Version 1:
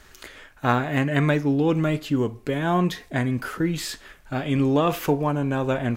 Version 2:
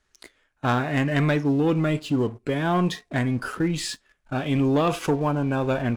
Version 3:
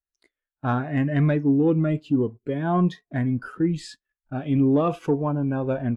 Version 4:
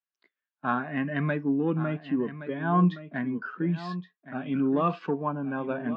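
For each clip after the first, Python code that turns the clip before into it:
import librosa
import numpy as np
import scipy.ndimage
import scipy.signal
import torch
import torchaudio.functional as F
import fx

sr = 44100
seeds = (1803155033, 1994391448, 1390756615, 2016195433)

y1 = fx.noise_reduce_blind(x, sr, reduce_db=10)
y1 = scipy.signal.sosfilt(scipy.signal.ellip(4, 1.0, 40, 11000.0, 'lowpass', fs=sr, output='sos'), y1)
y1 = fx.leveller(y1, sr, passes=2)
y1 = F.gain(torch.from_numpy(y1), -6.0).numpy()
y2 = fx.spectral_expand(y1, sr, expansion=1.5)
y3 = fx.cabinet(y2, sr, low_hz=180.0, low_slope=24, high_hz=4400.0, hz=(180.0, 310.0, 500.0, 1100.0, 1600.0, 2700.0), db=(7, -4, -4, 7, 6, 4))
y3 = y3 + 10.0 ** (-13.0 / 20.0) * np.pad(y3, (int(1120 * sr / 1000.0), 0))[:len(y3)]
y3 = F.gain(torch.from_numpy(y3), -4.0).numpy()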